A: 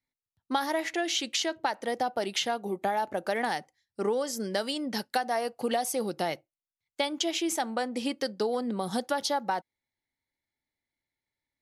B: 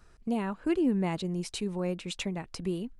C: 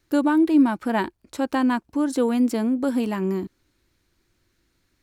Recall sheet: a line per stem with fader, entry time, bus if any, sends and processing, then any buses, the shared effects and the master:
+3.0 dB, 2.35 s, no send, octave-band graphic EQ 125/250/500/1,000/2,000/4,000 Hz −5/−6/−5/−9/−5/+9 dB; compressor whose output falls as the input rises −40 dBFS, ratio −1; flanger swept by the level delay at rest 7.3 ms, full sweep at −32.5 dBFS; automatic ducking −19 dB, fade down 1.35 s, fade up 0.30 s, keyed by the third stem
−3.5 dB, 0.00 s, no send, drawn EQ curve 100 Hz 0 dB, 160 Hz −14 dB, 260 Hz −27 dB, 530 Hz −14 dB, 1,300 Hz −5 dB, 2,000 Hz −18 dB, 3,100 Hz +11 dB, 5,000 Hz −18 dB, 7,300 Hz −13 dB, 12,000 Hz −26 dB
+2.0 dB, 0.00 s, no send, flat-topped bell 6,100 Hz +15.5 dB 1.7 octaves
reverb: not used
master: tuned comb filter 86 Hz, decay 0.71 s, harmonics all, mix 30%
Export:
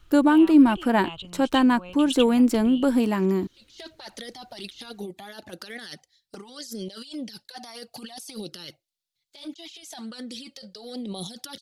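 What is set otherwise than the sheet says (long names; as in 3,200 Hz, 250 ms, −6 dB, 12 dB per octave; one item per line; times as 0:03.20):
stem B −3.5 dB → +4.5 dB
stem C: missing flat-topped bell 6,100 Hz +15.5 dB 1.7 octaves
master: missing tuned comb filter 86 Hz, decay 0.71 s, harmonics all, mix 30%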